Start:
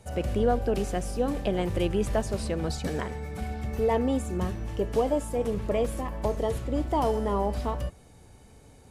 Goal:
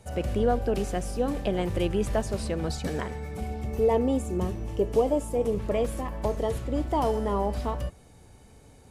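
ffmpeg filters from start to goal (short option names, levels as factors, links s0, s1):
-filter_complex "[0:a]asettb=1/sr,asplit=3[s0][s1][s2];[s0]atrim=end=3.354[s3];[s1]atrim=start=3.35:end=5.6,asetpts=PTS-STARTPTS,afade=t=in:d=0.004:c=qsin,afade=t=out:st=2.246:d=0.004:c=qsin,equalizer=f=400:t=o:w=0.67:g=4,equalizer=f=1600:t=o:w=0.67:g=-7,equalizer=f=4000:t=o:w=0.67:g=-3[s4];[s2]atrim=start=5.596[s5];[s3][s4]acrossfade=d=0.004:c1=hsin:c2=qsin[s6];[s6][s5]acrossfade=d=0.004:c1=qsin:c2=hsin"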